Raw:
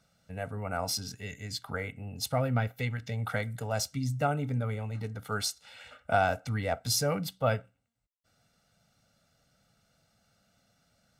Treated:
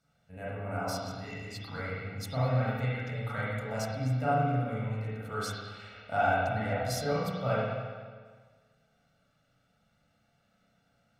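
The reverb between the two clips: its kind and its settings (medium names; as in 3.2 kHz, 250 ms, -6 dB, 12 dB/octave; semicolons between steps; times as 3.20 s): spring tank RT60 1.6 s, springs 32/39/46 ms, chirp 75 ms, DRR -9 dB; trim -9.5 dB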